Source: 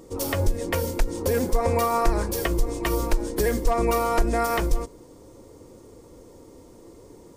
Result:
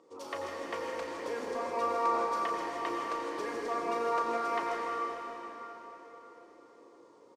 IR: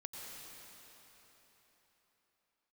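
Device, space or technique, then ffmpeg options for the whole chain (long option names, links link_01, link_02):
station announcement: -filter_complex "[0:a]highpass=380,lowpass=4700,equalizer=frequency=1100:width_type=o:width=0.5:gain=7.5,aecho=1:1:34.99|157.4:0.316|0.355[link_01];[1:a]atrim=start_sample=2205[link_02];[link_01][link_02]afir=irnorm=-1:irlink=0,volume=-6.5dB"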